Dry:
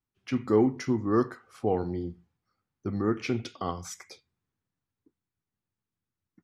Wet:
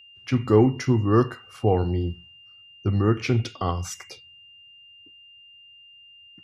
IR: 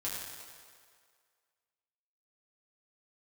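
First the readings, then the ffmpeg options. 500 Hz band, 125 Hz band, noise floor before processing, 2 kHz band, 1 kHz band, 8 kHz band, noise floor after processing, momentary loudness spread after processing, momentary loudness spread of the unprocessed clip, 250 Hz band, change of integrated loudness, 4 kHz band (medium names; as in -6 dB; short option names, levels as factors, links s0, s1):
+5.0 dB, +12.5 dB, under -85 dBFS, +6.0 dB, +5.5 dB, +5.5 dB, -51 dBFS, 14 LU, 15 LU, +4.0 dB, +6.0 dB, +8.0 dB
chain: -af "lowshelf=f=150:t=q:w=1.5:g=6.5,aeval=exprs='val(0)+0.00224*sin(2*PI*2800*n/s)':c=same,volume=1.88"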